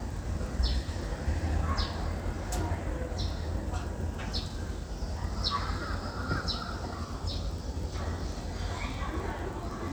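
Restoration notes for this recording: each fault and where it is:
surface crackle 16 per second −38 dBFS

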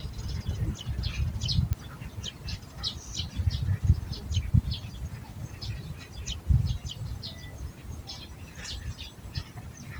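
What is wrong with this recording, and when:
0:01.73: click −17 dBFS

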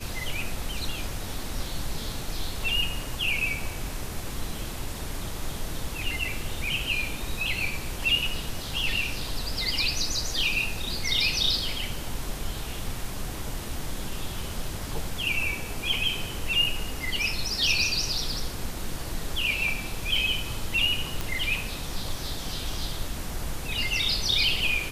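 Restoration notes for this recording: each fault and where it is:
0:21.21: click

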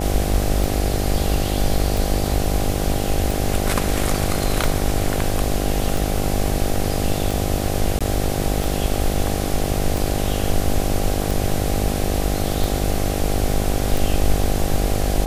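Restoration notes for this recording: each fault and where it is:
mains buzz 50 Hz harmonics 16 −24 dBFS
scratch tick 45 rpm
0:07.99–0:08.01: drop-out 16 ms

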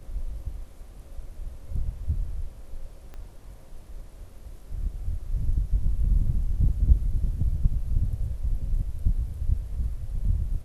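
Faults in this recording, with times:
0:03.14: click −29 dBFS

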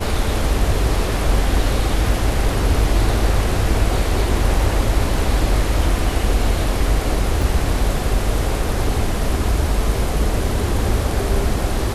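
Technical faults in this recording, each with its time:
0:07.42: drop-out 3.1 ms

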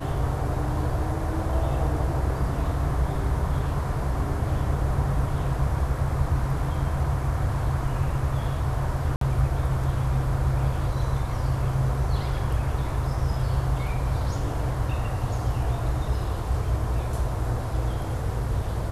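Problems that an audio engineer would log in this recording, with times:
0:09.16–0:09.21: drop-out 53 ms

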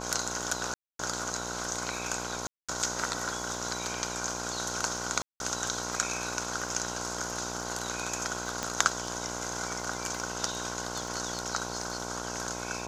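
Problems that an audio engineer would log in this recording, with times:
mains buzz 60 Hz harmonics 18 −39 dBFS
surface crackle 21 per second −39 dBFS
0:00.74–0:00.99: drop-out 253 ms
0:02.47–0:02.69: drop-out 216 ms
0:05.22–0:05.40: drop-out 181 ms
0:08.63: click −16 dBFS

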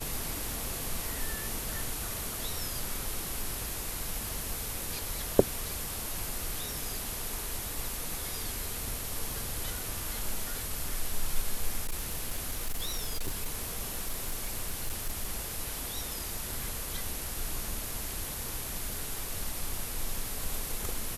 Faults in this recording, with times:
0:11.84–0:15.25: clipping −27.5 dBFS

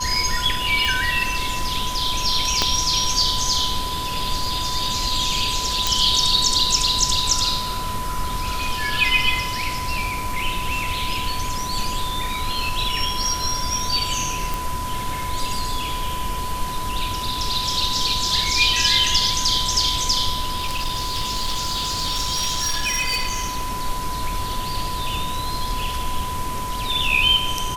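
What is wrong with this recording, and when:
whistle 1,000 Hz −27 dBFS
0:00.85: click
0:02.62: click −3 dBFS
0:05.87: click
0:14.54: click
0:20.56–0:23.69: clipping −19 dBFS

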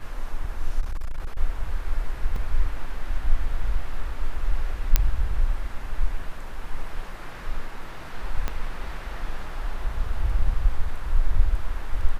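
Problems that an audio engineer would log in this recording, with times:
0:00.80–0:01.37: clipping −23 dBFS
0:02.36: drop-out 3.2 ms
0:04.96: click −3 dBFS
0:08.48: click −13 dBFS

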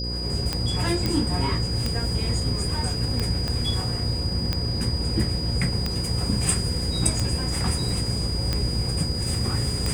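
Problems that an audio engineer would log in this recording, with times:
mains buzz 60 Hz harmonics 9 −30 dBFS
scratch tick 45 rpm −11 dBFS
whistle 4,900 Hz −30 dBFS
0:01.06: click −11 dBFS
0:03.48: click −15 dBFS

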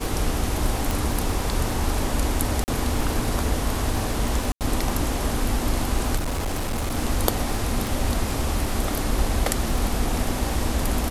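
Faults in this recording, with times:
surface crackle 25 per second −26 dBFS
0:00.91: click
0:02.64–0:02.68: drop-out 39 ms
0:04.52–0:04.61: drop-out 88 ms
0:06.16–0:06.97: clipping −22 dBFS
0:07.87: click

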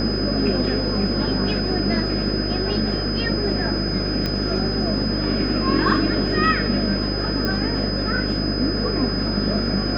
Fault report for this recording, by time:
mains buzz 50 Hz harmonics 12 −26 dBFS
whistle 5,000 Hz −27 dBFS
0:04.26: click −11 dBFS
0:07.45: click −11 dBFS

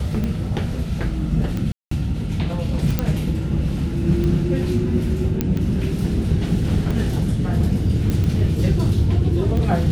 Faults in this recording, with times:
scratch tick 45 rpm −14 dBFS
0:01.72–0:01.91: drop-out 194 ms
0:02.99: click −6 dBFS
0:05.41: click −7 dBFS
0:08.10: click −11 dBFS

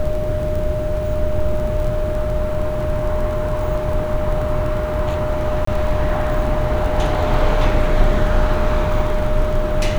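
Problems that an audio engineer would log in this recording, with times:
surface crackle 19 per second
whistle 610 Hz −22 dBFS
0:05.65–0:05.67: drop-out 24 ms

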